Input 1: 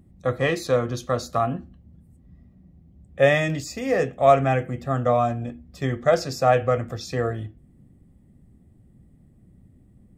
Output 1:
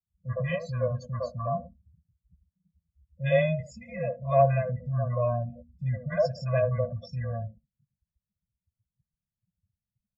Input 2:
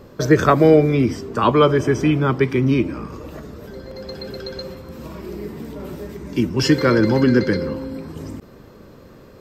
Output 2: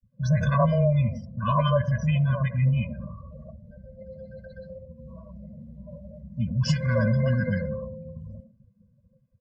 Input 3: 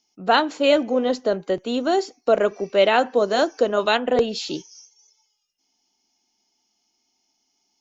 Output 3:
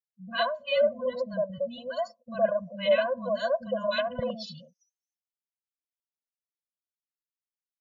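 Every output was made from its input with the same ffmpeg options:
ffmpeg -i in.wav -filter_complex "[0:a]adynamicequalizer=threshold=0.0316:dfrequency=120:dqfactor=0.72:tfrequency=120:tqfactor=0.72:attack=5:release=100:ratio=0.375:range=3:mode=boostabove:tftype=bell,afftdn=noise_reduction=33:noise_floor=-31,equalizer=frequency=900:width=2.7:gain=6,acrossover=split=270|1100[link_01][link_02][link_03];[link_03]adelay=40[link_04];[link_02]adelay=110[link_05];[link_01][link_05][link_04]amix=inputs=3:normalize=0,afftfilt=real='re*eq(mod(floor(b*sr/1024/240),2),0)':imag='im*eq(mod(floor(b*sr/1024/240),2),0)':win_size=1024:overlap=0.75,volume=-5.5dB" out.wav

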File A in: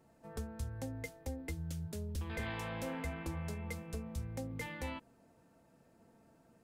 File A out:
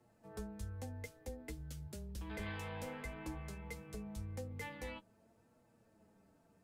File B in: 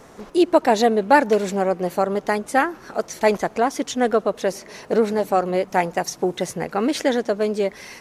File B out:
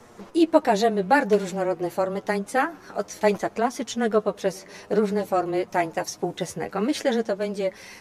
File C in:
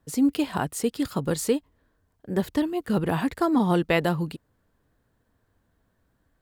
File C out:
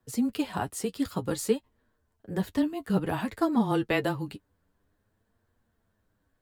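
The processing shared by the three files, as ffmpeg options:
ffmpeg -i in.wav -af "flanger=delay=8:depth=2.2:regen=31:speed=0.54:shape=triangular,afreqshift=-15" out.wav

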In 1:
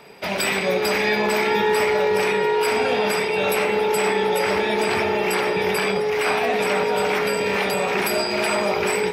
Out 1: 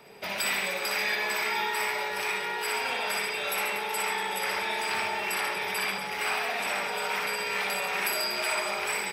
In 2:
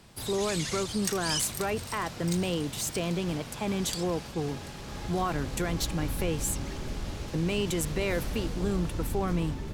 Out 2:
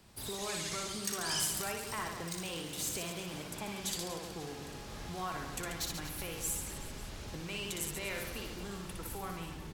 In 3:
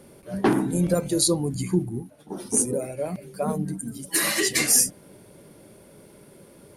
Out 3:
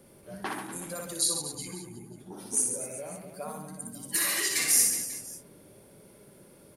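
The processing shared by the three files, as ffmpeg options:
ffmpeg -i in.wav -filter_complex "[0:a]highshelf=frequency=11000:gain=6,aecho=1:1:60|138|239.4|371.2|542.6:0.631|0.398|0.251|0.158|0.1,acrossover=split=780|4100[link_01][link_02][link_03];[link_01]acompressor=threshold=-34dB:ratio=8[link_04];[link_04][link_02][link_03]amix=inputs=3:normalize=0,volume=-7dB" out.wav

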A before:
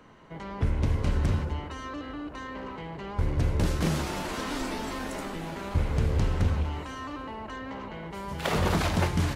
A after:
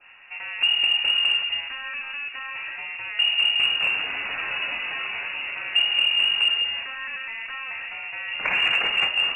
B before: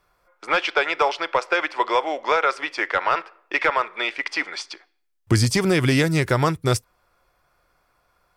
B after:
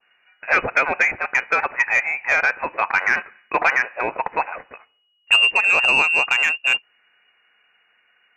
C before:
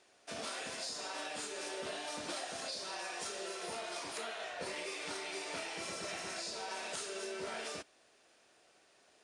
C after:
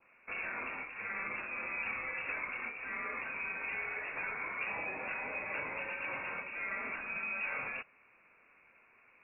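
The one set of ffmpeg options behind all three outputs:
ffmpeg -i in.wav -af "lowpass=frequency=2500:width_type=q:width=0.5098,lowpass=frequency=2500:width_type=q:width=0.6013,lowpass=frequency=2500:width_type=q:width=0.9,lowpass=frequency=2500:width_type=q:width=2.563,afreqshift=-2900,acontrast=80,adynamicequalizer=threshold=0.0501:dfrequency=2000:dqfactor=1.8:tfrequency=2000:tqfactor=1.8:attack=5:release=100:ratio=0.375:range=2.5:mode=cutabove:tftype=bell,volume=-2.5dB" out.wav

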